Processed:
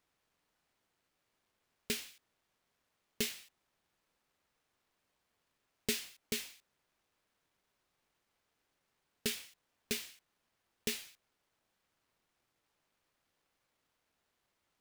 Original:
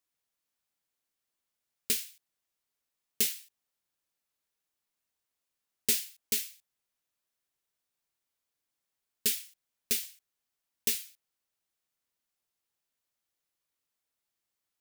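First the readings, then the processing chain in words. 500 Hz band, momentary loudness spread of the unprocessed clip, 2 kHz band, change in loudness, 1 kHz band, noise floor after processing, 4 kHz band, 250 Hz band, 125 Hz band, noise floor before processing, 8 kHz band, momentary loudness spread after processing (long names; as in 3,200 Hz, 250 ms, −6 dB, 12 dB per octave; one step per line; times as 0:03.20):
+2.5 dB, 16 LU, −1.0 dB, −8.5 dB, can't be measured, −83 dBFS, −4.0 dB, +2.5 dB, +2.5 dB, below −85 dBFS, −9.0 dB, 15 LU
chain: mu-law and A-law mismatch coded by mu
low-pass filter 1,900 Hz 6 dB per octave
level +2 dB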